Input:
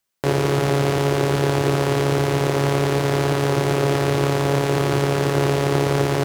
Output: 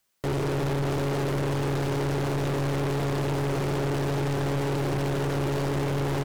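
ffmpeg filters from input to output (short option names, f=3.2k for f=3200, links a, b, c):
-af "aecho=1:1:270:0.0944,aeval=exprs='(tanh(28.2*val(0)+0.15)-tanh(0.15))/28.2':c=same,volume=4dB"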